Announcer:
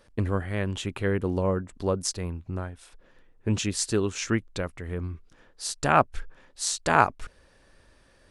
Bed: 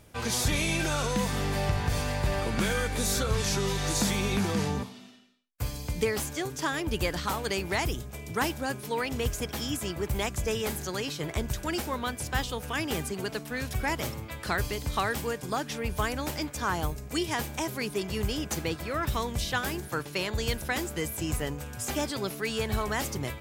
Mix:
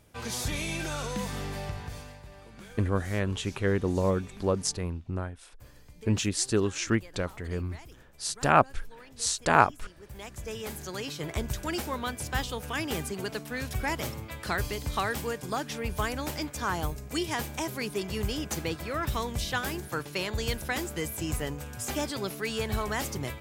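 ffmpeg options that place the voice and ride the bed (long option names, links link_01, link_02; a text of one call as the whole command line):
ffmpeg -i stem1.wav -i stem2.wav -filter_complex "[0:a]adelay=2600,volume=-0.5dB[link_01];[1:a]volume=14.5dB,afade=type=out:start_time=1.35:duration=0.88:silence=0.16788,afade=type=in:start_time=9.98:duration=1.38:silence=0.105925[link_02];[link_01][link_02]amix=inputs=2:normalize=0" out.wav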